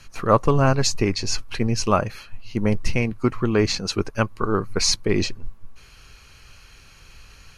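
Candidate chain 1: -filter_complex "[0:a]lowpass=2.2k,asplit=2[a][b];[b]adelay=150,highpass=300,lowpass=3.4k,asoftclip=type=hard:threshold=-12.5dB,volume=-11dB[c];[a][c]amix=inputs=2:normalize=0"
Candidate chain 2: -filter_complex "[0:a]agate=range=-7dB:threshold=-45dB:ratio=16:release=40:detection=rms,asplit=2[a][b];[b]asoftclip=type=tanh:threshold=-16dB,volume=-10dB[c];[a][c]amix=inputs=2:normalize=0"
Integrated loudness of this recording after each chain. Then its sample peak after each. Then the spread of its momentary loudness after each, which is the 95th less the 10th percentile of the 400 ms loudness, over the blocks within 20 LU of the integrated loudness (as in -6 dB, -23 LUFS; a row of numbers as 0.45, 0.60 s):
-23.5, -21.0 LUFS; -3.5, -2.5 dBFS; 13, 7 LU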